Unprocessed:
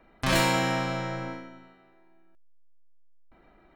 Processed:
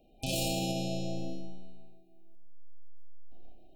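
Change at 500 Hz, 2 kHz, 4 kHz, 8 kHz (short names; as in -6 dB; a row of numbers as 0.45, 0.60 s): -6.5, -16.5, -5.0, -2.5 dB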